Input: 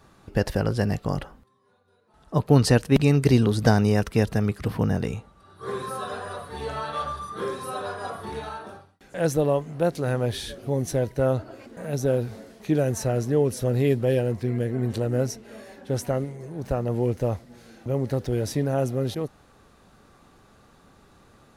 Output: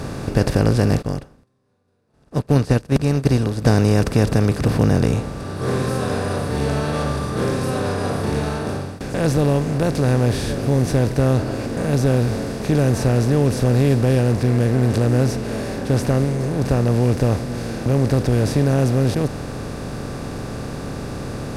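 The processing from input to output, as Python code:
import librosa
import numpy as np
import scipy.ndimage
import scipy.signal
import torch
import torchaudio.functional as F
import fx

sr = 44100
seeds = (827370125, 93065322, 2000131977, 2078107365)

y = fx.bin_compress(x, sr, power=0.4)
y = fx.low_shelf(y, sr, hz=200.0, db=8.5)
y = fx.upward_expand(y, sr, threshold_db=-29.0, expansion=2.5, at=(1.01, 3.64), fade=0.02)
y = y * librosa.db_to_amplitude(-4.0)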